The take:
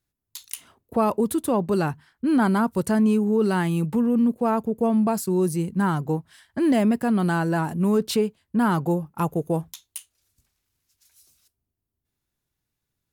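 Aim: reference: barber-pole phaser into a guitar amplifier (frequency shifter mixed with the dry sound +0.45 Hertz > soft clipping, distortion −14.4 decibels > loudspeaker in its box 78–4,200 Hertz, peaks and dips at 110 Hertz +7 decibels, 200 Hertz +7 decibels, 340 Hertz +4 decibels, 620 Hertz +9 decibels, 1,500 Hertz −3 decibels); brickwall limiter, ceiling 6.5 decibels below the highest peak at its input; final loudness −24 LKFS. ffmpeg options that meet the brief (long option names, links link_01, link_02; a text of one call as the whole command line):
ffmpeg -i in.wav -filter_complex "[0:a]alimiter=limit=-17dB:level=0:latency=1,asplit=2[link_01][link_02];[link_02]afreqshift=0.45[link_03];[link_01][link_03]amix=inputs=2:normalize=1,asoftclip=threshold=-24dB,highpass=78,equalizer=frequency=110:width_type=q:width=4:gain=7,equalizer=frequency=200:width_type=q:width=4:gain=7,equalizer=frequency=340:width_type=q:width=4:gain=4,equalizer=frequency=620:width_type=q:width=4:gain=9,equalizer=frequency=1500:width_type=q:width=4:gain=-3,lowpass=frequency=4200:width=0.5412,lowpass=frequency=4200:width=1.3066,volume=3dB" out.wav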